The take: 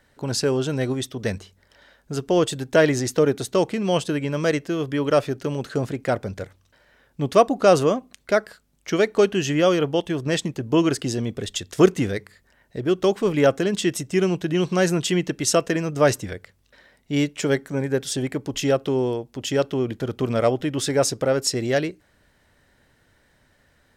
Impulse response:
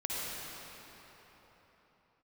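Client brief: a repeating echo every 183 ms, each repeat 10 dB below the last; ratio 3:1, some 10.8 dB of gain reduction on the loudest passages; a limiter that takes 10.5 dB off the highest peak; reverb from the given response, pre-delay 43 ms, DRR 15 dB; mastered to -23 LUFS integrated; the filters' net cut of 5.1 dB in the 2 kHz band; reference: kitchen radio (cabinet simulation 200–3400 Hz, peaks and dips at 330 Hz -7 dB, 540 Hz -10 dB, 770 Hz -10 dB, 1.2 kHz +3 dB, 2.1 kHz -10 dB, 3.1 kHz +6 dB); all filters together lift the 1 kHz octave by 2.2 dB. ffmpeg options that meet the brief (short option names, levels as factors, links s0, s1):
-filter_complex "[0:a]equalizer=f=1000:t=o:g=9,equalizer=f=2000:t=o:g=-8.5,acompressor=threshold=0.0794:ratio=3,alimiter=limit=0.1:level=0:latency=1,aecho=1:1:183|366|549|732:0.316|0.101|0.0324|0.0104,asplit=2[s0][s1];[1:a]atrim=start_sample=2205,adelay=43[s2];[s1][s2]afir=irnorm=-1:irlink=0,volume=0.0944[s3];[s0][s3]amix=inputs=2:normalize=0,highpass=200,equalizer=f=330:t=q:w=4:g=-7,equalizer=f=540:t=q:w=4:g=-10,equalizer=f=770:t=q:w=4:g=-10,equalizer=f=1200:t=q:w=4:g=3,equalizer=f=2100:t=q:w=4:g=-10,equalizer=f=3100:t=q:w=4:g=6,lowpass=f=3400:w=0.5412,lowpass=f=3400:w=1.3066,volume=3.76"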